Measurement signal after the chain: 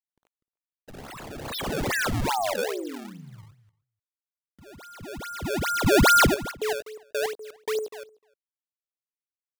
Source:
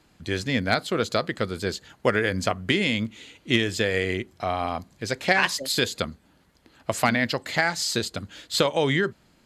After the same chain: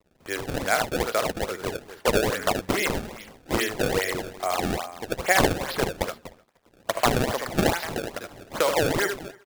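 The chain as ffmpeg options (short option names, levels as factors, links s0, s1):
-filter_complex "[0:a]acrusher=bits=8:mix=0:aa=0.000001,acrossover=split=390 3100:gain=0.1 1 0.158[s0][s1][s2];[s0][s1][s2]amix=inputs=3:normalize=0,asplit=2[s3][s4];[s4]aecho=0:1:55|76|93|247:0.126|0.531|0.158|0.224[s5];[s3][s5]amix=inputs=2:normalize=0,acrusher=samples=25:mix=1:aa=0.000001:lfo=1:lforange=40:lforate=2.4,asplit=2[s6][s7];[s7]adelay=303.2,volume=0.0501,highshelf=f=4000:g=-6.82[s8];[s6][s8]amix=inputs=2:normalize=0,volume=1.19"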